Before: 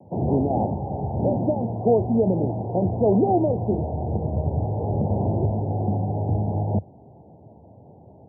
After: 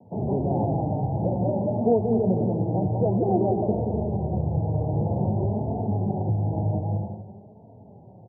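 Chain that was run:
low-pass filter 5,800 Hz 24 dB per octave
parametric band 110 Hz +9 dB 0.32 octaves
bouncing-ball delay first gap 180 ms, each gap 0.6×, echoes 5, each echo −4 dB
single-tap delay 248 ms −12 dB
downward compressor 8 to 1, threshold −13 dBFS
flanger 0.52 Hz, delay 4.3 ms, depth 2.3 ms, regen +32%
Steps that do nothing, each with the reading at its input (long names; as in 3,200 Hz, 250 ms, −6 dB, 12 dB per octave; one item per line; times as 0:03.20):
low-pass filter 5,800 Hz: nothing at its input above 910 Hz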